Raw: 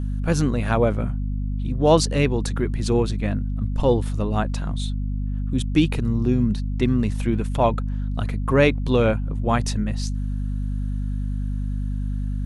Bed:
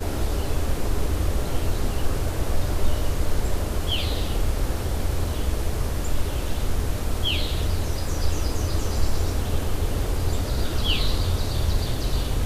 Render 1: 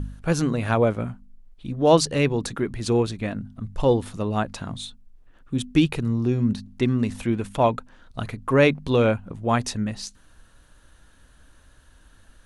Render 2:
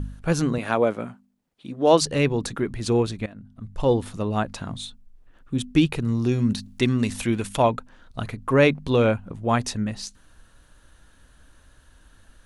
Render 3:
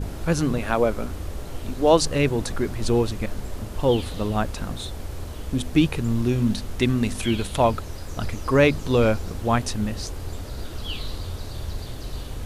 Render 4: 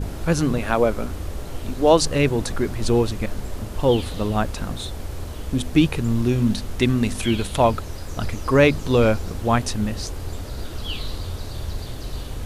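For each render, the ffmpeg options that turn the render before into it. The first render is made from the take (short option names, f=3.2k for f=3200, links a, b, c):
-af "bandreject=f=50:t=h:w=4,bandreject=f=100:t=h:w=4,bandreject=f=150:t=h:w=4,bandreject=f=200:t=h:w=4,bandreject=f=250:t=h:w=4"
-filter_complex "[0:a]asettb=1/sr,asplit=3[a][b][c];[a]atrim=end=0.584[d];[b]atrim=start=0.58:end=2.01,asetpts=PTS-STARTPTS,afade=t=in:d=0.004:c=qsin,afade=t=out:st=1.426:d=0.004:c=qsin,highpass=220[e];[c]atrim=start=2.006[f];[d][e]acrossfade=d=0.004:c1=hsin:c2=qsin[g];[g][f]acrossfade=d=0.004:c1=qsin:c2=hsin,asettb=1/sr,asplit=3[h][i][j];[h]atrim=end=6.084[k];[i]atrim=start=6.08:end=7.62,asetpts=PTS-STARTPTS,afade=t=in:d=0.004:c=qsin,afade=t=out:st=1.536:d=0.004:c=qsin,highshelf=f=2.2k:g=10[l];[j]atrim=start=7.616[m];[k][l]acrossfade=d=0.004:c1=hsin:c2=qsin[n];[n][m]acrossfade=d=0.004:c1=qsin:c2=hsin,asplit=2[o][p];[o]atrim=end=3.26,asetpts=PTS-STARTPTS,afade=t=out:st=3.256:d=0.004:c=hsin:silence=0.141254[q];[p]atrim=start=3.26,asetpts=PTS-STARTPTS,afade=t=in:d=0.72:silence=0.141254[r];[q][r]concat=n=2:v=0:a=1"
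-filter_complex "[1:a]volume=-8.5dB[a];[0:a][a]amix=inputs=2:normalize=0"
-af "volume=2dB,alimiter=limit=-3dB:level=0:latency=1"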